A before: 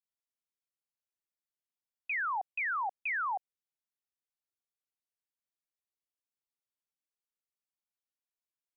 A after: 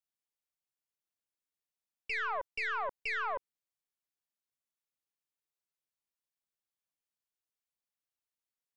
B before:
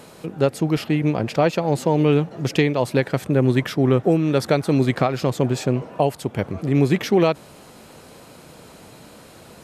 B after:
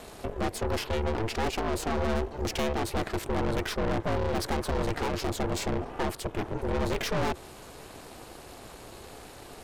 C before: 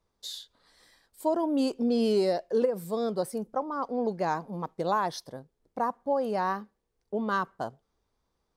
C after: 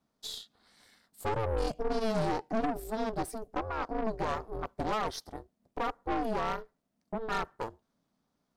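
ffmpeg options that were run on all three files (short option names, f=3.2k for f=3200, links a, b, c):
-af "aeval=exprs='val(0)*sin(2*PI*220*n/s)':c=same,aeval=exprs='(tanh(31.6*val(0)+0.55)-tanh(0.55))/31.6':c=same,volume=4dB"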